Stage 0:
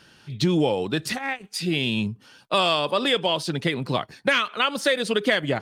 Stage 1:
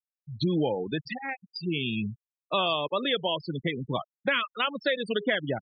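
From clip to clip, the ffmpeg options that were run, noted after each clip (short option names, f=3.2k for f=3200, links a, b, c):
-af "afftfilt=real='re*gte(hypot(re,im),0.0891)':imag='im*gte(hypot(re,im),0.0891)':win_size=1024:overlap=0.75,volume=-5dB"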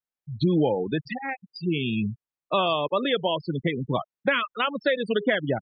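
-af "highshelf=f=3.6k:g=-11.5,volume=4.5dB"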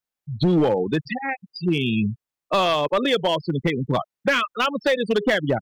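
-af "asoftclip=type=hard:threshold=-18dB,volume=4.5dB"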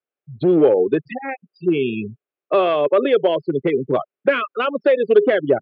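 -af "highpass=190,equalizer=f=200:t=q:w=4:g=-8,equalizer=f=400:t=q:w=4:g=10,equalizer=f=580:t=q:w=4:g=4,equalizer=f=920:t=q:w=4:g=-8,equalizer=f=1.9k:t=q:w=4:g=-6,lowpass=f=2.6k:w=0.5412,lowpass=f=2.6k:w=1.3066,volume=2dB"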